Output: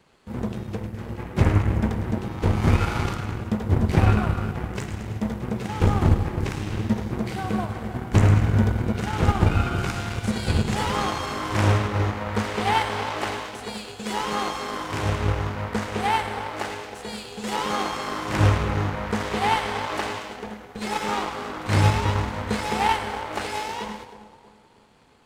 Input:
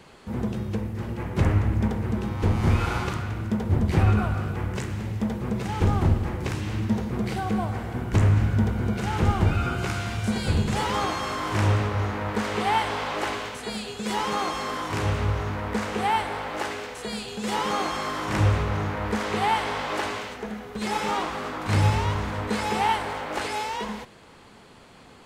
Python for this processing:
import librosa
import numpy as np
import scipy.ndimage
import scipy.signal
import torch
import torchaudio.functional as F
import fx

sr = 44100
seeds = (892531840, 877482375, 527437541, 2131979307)

y = fx.echo_split(x, sr, split_hz=990.0, low_ms=318, high_ms=104, feedback_pct=52, wet_db=-9)
y = fx.power_curve(y, sr, exponent=1.4)
y = y * 10.0 ** (5.0 / 20.0)